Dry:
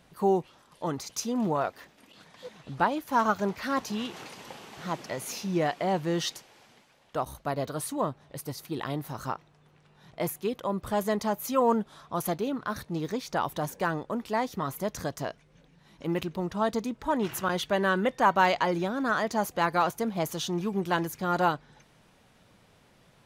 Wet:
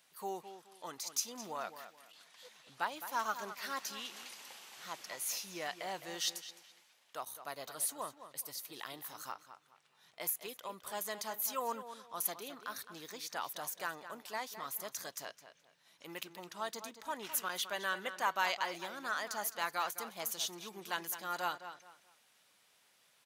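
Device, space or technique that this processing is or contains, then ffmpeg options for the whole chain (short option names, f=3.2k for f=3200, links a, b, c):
behind a face mask: -filter_complex "[0:a]aderivative,highshelf=f=3.5k:g=-8,asplit=2[a][b];[b]adelay=212,lowpass=f=4.2k:p=1,volume=-11dB,asplit=2[c][d];[d]adelay=212,lowpass=f=4.2k:p=1,volume=0.28,asplit=2[e][f];[f]adelay=212,lowpass=f=4.2k:p=1,volume=0.28[g];[a][c][e][g]amix=inputs=4:normalize=0,volume=6.5dB"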